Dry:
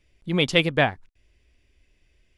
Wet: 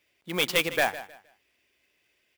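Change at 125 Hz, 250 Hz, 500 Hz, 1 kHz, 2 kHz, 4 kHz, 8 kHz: −14.5, −10.5, −5.0, −3.0, −2.5, −3.5, +5.5 decibels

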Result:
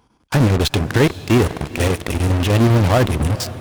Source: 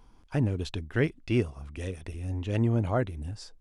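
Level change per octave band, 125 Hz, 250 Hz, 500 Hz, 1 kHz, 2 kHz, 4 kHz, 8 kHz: +13.0, +12.5, +13.0, +16.5, +14.0, +19.5, +22.5 decibels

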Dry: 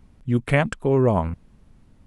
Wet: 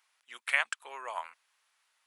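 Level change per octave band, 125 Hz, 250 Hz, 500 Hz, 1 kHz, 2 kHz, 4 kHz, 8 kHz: below −40 dB, below −40 dB, −25.5 dB, −10.5 dB, −2.0 dB, −0.5 dB, can't be measured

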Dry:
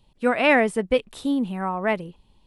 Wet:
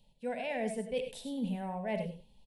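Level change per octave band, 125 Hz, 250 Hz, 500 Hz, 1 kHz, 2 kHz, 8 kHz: −6.0, −12.5, −13.0, −15.5, −19.5, −7.5 decibels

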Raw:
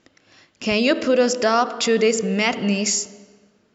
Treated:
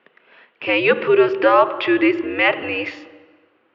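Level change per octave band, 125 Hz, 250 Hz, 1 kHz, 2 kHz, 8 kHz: −7.0 dB, +0.5 dB, +3.5 dB, +5.5 dB, can't be measured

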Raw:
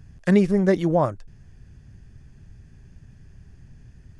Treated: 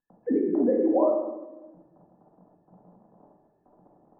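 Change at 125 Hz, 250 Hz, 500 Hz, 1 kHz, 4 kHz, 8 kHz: below −20 dB, −4.0 dB, −1.5 dB, −4.5 dB, below −35 dB, can't be measured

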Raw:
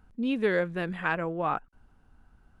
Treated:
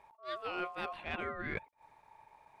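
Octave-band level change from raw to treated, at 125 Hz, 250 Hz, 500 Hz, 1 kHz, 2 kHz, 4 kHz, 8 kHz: −13.0 dB, −16.5 dB, −13.0 dB, −8.0 dB, −9.0 dB, −4.0 dB, can't be measured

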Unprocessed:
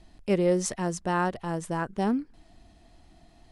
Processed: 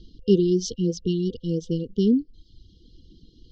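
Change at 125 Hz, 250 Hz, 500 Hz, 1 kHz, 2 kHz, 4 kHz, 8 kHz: +6.0 dB, +6.5 dB, +3.5 dB, below −40 dB, below −15 dB, +6.5 dB, −2.0 dB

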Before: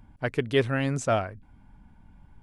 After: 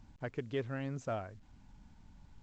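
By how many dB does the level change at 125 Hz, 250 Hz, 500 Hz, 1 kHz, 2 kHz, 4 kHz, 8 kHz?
−11.5, −11.5, −12.5, −13.5, −15.0, −17.5, −19.0 decibels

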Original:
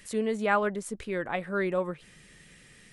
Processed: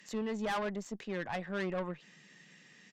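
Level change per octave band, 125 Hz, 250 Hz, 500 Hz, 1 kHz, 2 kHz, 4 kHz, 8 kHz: −4.0, −5.0, −8.5, −8.0, −8.0, −1.0, −8.5 decibels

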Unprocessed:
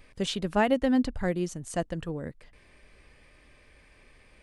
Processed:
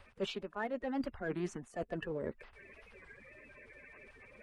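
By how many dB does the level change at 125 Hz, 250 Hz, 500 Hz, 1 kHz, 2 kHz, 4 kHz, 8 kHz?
−11.0, −12.5, −9.0, −11.5, −8.0, −11.0, −15.5 decibels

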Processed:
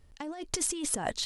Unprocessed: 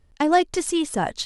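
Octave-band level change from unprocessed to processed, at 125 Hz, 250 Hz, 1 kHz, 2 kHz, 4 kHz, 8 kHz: −9.0, −15.0, −17.0, −13.0, −6.0, +0.5 decibels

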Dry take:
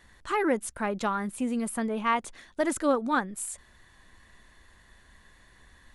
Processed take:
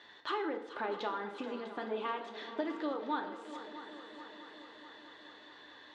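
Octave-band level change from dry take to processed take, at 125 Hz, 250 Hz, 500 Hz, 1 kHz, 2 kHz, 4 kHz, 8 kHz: can't be measured, −11.0 dB, −8.0 dB, −8.0 dB, −9.0 dB, −2.0 dB, below −25 dB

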